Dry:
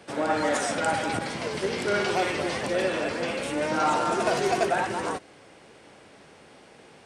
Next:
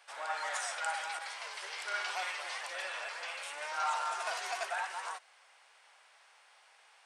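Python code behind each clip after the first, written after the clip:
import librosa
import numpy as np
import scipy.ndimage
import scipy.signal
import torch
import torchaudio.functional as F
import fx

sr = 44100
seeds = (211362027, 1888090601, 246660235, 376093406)

y = scipy.signal.sosfilt(scipy.signal.butter(4, 830.0, 'highpass', fs=sr, output='sos'), x)
y = y * 10.0 ** (-7.0 / 20.0)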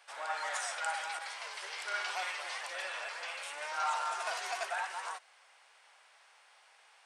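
y = x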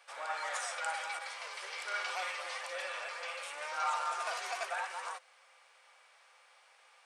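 y = fx.small_body(x, sr, hz=(520.0, 1200.0, 2300.0), ring_ms=95, db=11)
y = y * 10.0 ** (-1.5 / 20.0)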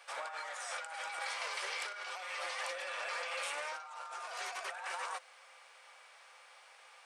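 y = fx.over_compress(x, sr, threshold_db=-43.0, ratio=-1.0)
y = y * 10.0 ** (1.0 / 20.0)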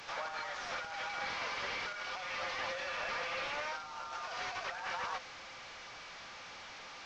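y = fx.delta_mod(x, sr, bps=32000, step_db=-45.0)
y = y * 10.0 ** (2.0 / 20.0)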